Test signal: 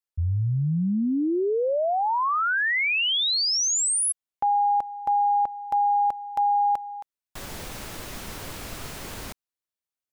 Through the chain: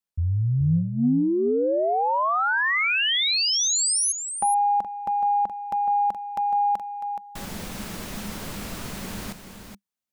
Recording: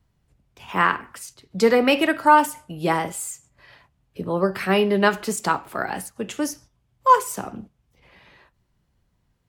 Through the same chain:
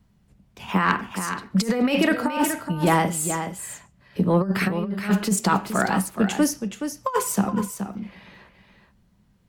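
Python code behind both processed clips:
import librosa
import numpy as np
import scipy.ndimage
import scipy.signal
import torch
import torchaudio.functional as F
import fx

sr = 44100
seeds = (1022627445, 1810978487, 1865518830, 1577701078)

y = fx.peak_eq(x, sr, hz=200.0, db=13.0, octaves=0.39)
y = fx.over_compress(y, sr, threshold_db=-19.0, ratio=-0.5)
y = 10.0 ** (-7.0 / 20.0) * np.tanh(y / 10.0 ** (-7.0 / 20.0))
y = y + 10.0 ** (-8.5 / 20.0) * np.pad(y, (int(423 * sr / 1000.0), 0))[:len(y)]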